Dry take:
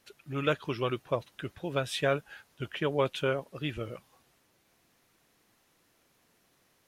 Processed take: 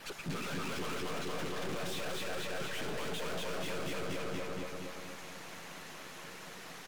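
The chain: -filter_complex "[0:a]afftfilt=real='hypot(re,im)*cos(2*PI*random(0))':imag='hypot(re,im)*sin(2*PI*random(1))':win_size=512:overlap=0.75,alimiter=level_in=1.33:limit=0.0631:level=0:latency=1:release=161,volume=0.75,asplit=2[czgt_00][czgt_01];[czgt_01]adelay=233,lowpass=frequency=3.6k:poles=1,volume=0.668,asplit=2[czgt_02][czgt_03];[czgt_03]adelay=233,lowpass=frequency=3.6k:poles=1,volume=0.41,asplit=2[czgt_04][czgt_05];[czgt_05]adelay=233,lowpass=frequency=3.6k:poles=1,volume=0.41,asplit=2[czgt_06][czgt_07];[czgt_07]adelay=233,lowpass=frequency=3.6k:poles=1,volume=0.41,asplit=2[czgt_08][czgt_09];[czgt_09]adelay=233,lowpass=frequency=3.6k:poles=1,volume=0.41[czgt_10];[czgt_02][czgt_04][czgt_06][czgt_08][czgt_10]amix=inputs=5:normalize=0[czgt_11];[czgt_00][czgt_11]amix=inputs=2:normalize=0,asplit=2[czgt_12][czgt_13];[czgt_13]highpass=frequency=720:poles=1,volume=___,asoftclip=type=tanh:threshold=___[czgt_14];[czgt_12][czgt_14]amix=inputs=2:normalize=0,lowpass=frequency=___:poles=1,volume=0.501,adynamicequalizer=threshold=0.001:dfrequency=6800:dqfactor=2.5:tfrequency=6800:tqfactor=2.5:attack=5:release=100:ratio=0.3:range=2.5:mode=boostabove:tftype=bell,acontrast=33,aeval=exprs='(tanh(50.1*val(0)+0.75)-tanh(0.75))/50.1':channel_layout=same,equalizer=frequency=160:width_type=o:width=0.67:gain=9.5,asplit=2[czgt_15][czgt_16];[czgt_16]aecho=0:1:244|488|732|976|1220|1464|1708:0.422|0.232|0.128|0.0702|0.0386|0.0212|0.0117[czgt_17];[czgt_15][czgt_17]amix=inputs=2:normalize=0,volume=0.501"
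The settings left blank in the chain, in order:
100, 0.0668, 2.9k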